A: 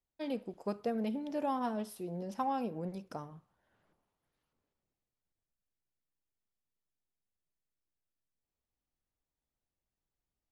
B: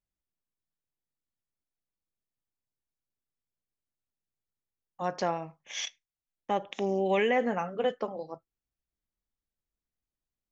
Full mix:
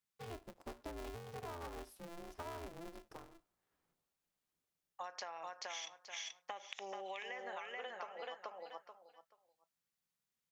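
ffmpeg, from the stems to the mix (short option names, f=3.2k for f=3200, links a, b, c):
-filter_complex "[0:a]aeval=exprs='val(0)*sgn(sin(2*PI*170*n/s))':c=same,volume=-10.5dB[a];[1:a]highpass=1k,acompressor=threshold=-36dB:ratio=6,volume=2.5dB,asplit=2[b][c];[c]volume=-3.5dB,aecho=0:1:432|864|1296:1|0.2|0.04[d];[a][b][d]amix=inputs=3:normalize=0,acompressor=threshold=-42dB:ratio=12"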